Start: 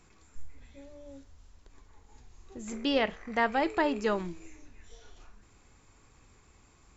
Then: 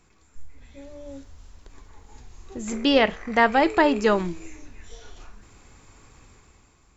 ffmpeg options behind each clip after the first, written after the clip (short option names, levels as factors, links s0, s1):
-af "dynaudnorm=f=160:g=9:m=2.82"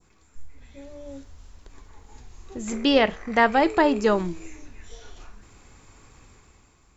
-af "adynamicequalizer=threshold=0.0141:dfrequency=2300:dqfactor=0.84:tfrequency=2300:tqfactor=0.84:attack=5:release=100:ratio=0.375:range=2.5:mode=cutabove:tftype=bell"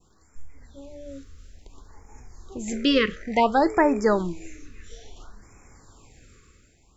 -af "afftfilt=real='re*(1-between(b*sr/1024,750*pow(3700/750,0.5+0.5*sin(2*PI*0.58*pts/sr))/1.41,750*pow(3700/750,0.5+0.5*sin(2*PI*0.58*pts/sr))*1.41))':imag='im*(1-between(b*sr/1024,750*pow(3700/750,0.5+0.5*sin(2*PI*0.58*pts/sr))/1.41,750*pow(3700/750,0.5+0.5*sin(2*PI*0.58*pts/sr))*1.41))':win_size=1024:overlap=0.75"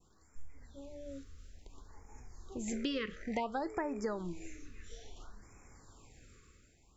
-af "acompressor=threshold=0.0501:ratio=10,volume=0.473"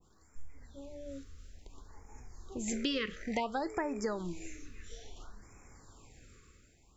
-af "adynamicequalizer=threshold=0.002:dfrequency=2200:dqfactor=0.7:tfrequency=2200:tqfactor=0.7:attack=5:release=100:ratio=0.375:range=2.5:mode=boostabove:tftype=highshelf,volume=1.19"